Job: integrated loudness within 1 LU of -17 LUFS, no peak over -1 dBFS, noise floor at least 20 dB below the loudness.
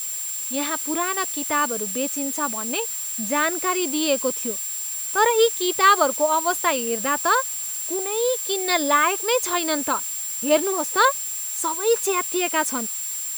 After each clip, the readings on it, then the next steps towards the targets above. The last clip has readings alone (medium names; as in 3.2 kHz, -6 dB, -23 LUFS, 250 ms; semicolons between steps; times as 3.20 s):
steady tone 7.4 kHz; tone level -28 dBFS; noise floor -29 dBFS; noise floor target -42 dBFS; loudness -21.5 LUFS; peak level -4.5 dBFS; loudness target -17.0 LUFS
-> band-stop 7.4 kHz, Q 30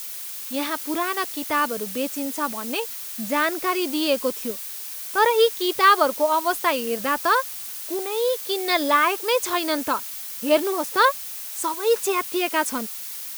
steady tone not found; noise floor -34 dBFS; noise floor target -43 dBFS
-> noise reduction 9 dB, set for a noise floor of -34 dBFS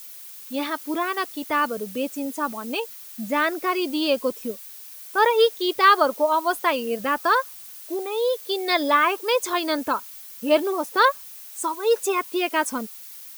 noise floor -41 dBFS; noise floor target -43 dBFS
-> noise reduction 6 dB, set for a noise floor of -41 dBFS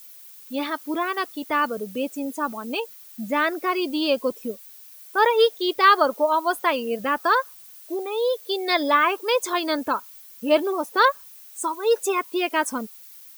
noise floor -46 dBFS; loudness -23.0 LUFS; peak level -5.0 dBFS; loudness target -17.0 LUFS
-> trim +6 dB; peak limiter -1 dBFS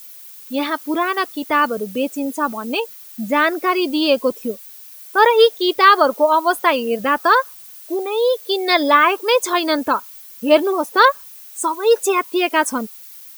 loudness -17.0 LUFS; peak level -1.0 dBFS; noise floor -40 dBFS